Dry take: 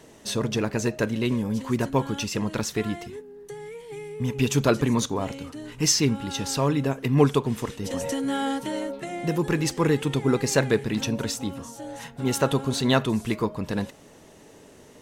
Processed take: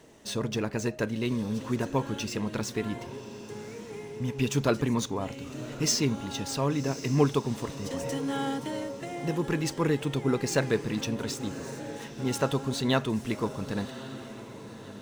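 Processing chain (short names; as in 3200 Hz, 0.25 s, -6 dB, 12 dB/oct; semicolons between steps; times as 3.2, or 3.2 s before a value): median filter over 3 samples; diffused feedback echo 1.12 s, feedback 43%, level -13 dB; gain -4.5 dB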